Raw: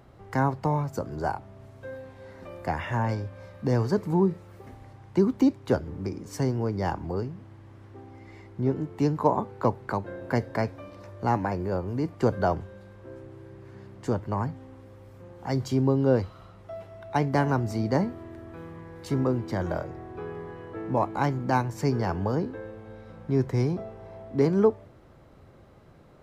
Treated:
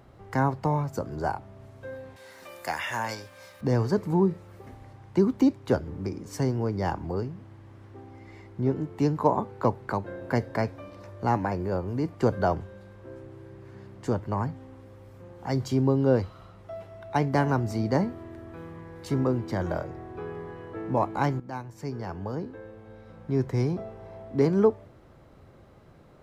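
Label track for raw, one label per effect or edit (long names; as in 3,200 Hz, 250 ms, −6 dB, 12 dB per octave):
2.160000	3.610000	spectral tilt +4.5 dB per octave
21.400000	23.880000	fade in, from −14 dB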